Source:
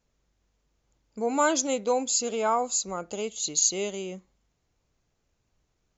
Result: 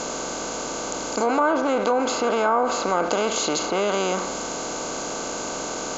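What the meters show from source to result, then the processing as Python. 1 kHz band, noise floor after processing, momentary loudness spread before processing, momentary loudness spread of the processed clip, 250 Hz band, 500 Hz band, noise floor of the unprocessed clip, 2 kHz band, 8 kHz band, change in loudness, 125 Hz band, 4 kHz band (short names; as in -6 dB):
+7.5 dB, -30 dBFS, 11 LU, 8 LU, +7.0 dB, +7.0 dB, -76 dBFS, +8.5 dB, n/a, +2.5 dB, +8.0 dB, +5.5 dB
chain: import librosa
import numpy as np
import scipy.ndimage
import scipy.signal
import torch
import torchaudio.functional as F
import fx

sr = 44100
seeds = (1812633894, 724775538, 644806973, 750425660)

y = fx.bin_compress(x, sr, power=0.4)
y = fx.dynamic_eq(y, sr, hz=1400.0, q=1.0, threshold_db=-38.0, ratio=4.0, max_db=4)
y = fx.env_lowpass_down(y, sr, base_hz=1500.0, full_db=-15.5)
y = fx.env_flatten(y, sr, amount_pct=50)
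y = y * librosa.db_to_amplitude(-1.0)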